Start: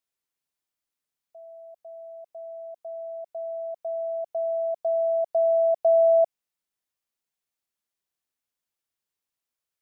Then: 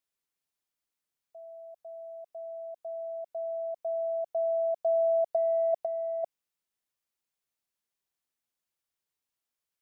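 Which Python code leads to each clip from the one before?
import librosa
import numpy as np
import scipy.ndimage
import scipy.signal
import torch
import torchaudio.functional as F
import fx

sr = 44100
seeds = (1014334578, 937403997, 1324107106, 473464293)

y = fx.over_compress(x, sr, threshold_db=-22.0, ratio=-0.5)
y = y * 10.0 ** (-3.5 / 20.0)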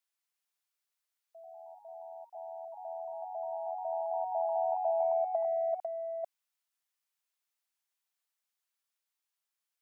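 y = fx.echo_pitch(x, sr, ms=236, semitones=2, count=3, db_per_echo=-6.0)
y = scipy.signal.sosfilt(scipy.signal.butter(2, 810.0, 'highpass', fs=sr, output='sos'), y)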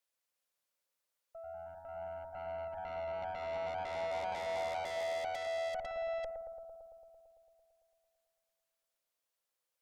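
y = fx.peak_eq(x, sr, hz=530.0, db=12.0, octaves=0.37)
y = fx.tube_stage(y, sr, drive_db=40.0, bias=0.6)
y = fx.echo_bbd(y, sr, ms=112, stages=1024, feedback_pct=76, wet_db=-6)
y = y * 10.0 ** (3.0 / 20.0)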